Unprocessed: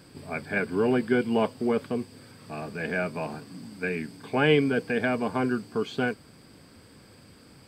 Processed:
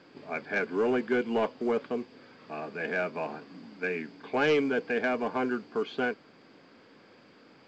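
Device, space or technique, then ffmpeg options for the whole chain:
telephone: -af "highpass=280,lowpass=3300,asoftclip=type=tanh:threshold=-18dB" -ar 16000 -c:a pcm_mulaw

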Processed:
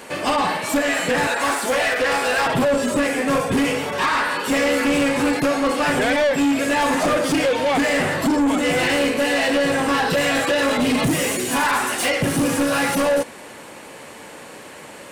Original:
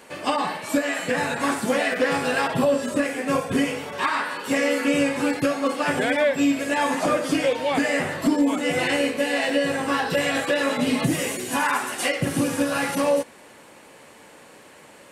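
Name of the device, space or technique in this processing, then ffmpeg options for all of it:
saturation between pre-emphasis and de-emphasis: -filter_complex "[0:a]asettb=1/sr,asplit=3[link_01][link_02][link_03];[link_01]atrim=end=1.274[link_04];[link_02]atrim=start=1.27:end=2.46,asetpts=PTS-STARTPTS,afade=type=in:duration=0.004:curve=qsin,afade=type=out:start_time=1.186:duration=0.004:curve=qsin,highpass=460[link_05];[link_03]atrim=start=2.456[link_06];[link_04][link_05]acrossfade=duration=0.004:curve1=hsin:curve2=qsin[link_07];[link_07][link_06]acrossfade=duration=0.004:curve1=qsin:curve2=hsin,highshelf=frequency=4800:gain=7,asoftclip=type=tanh:threshold=-24dB,highshelf=frequency=4800:gain=-7,volume=9dB"

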